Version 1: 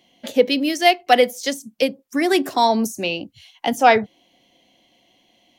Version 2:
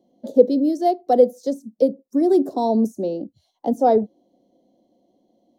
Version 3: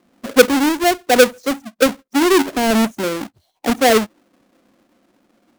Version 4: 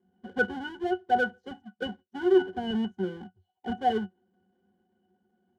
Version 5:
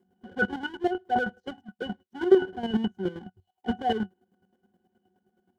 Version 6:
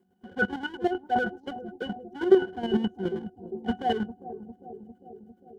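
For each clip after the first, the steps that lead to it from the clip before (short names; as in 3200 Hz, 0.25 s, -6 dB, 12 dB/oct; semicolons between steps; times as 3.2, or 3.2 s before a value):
EQ curve 130 Hz 0 dB, 210 Hz +10 dB, 550 Hz +10 dB, 2600 Hz -29 dB, 3900 Hz -9 dB; gain -7.5 dB
half-waves squared off
octave resonator F#, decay 0.11 s; gain -2.5 dB
chopper 9.5 Hz, depth 65%, duty 30%; gain +6 dB
analogue delay 0.401 s, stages 2048, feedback 69%, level -13.5 dB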